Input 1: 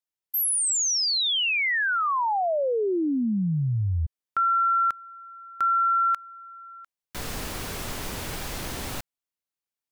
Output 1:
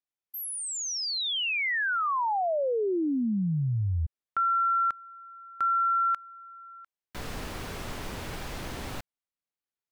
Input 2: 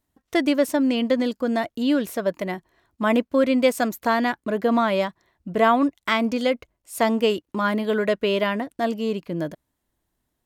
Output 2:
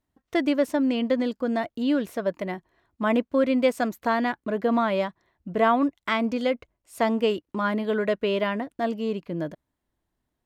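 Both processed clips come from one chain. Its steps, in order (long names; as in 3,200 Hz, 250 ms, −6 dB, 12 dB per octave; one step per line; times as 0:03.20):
high-shelf EQ 5,300 Hz −10 dB
level −2.5 dB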